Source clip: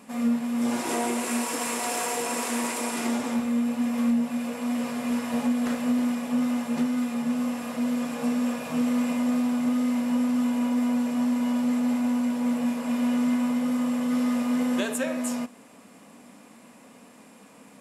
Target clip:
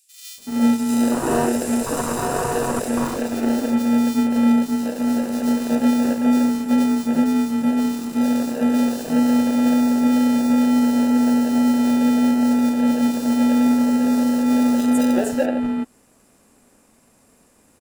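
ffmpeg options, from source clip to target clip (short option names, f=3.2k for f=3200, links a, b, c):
-filter_complex "[0:a]afwtdn=0.0501,bass=f=250:g=-8,treble=f=4k:g=9,asplit=2[a][b];[b]acrusher=samples=40:mix=1:aa=0.000001,volume=-3dB[c];[a][c]amix=inputs=2:normalize=0,acrossover=split=3200[d][e];[d]adelay=380[f];[f][e]amix=inputs=2:normalize=0,volume=8dB"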